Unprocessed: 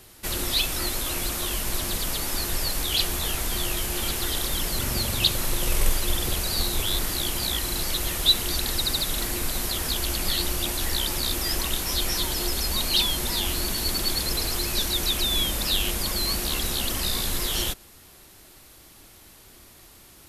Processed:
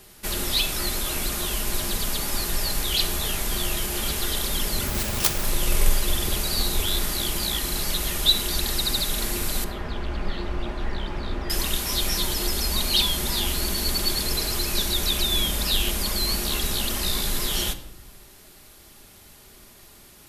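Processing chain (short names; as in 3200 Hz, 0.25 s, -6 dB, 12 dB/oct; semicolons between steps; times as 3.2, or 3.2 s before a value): 4.87–5.44 self-modulated delay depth 0.88 ms; 9.64–11.5 LPF 1700 Hz 12 dB/oct; reverb RT60 0.90 s, pre-delay 5 ms, DRR 7 dB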